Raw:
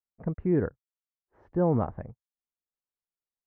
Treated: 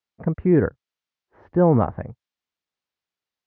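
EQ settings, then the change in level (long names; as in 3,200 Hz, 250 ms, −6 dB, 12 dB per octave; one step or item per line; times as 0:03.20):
high-pass filter 60 Hz
high-frequency loss of the air 190 metres
high-shelf EQ 2,200 Hz +10.5 dB
+8.0 dB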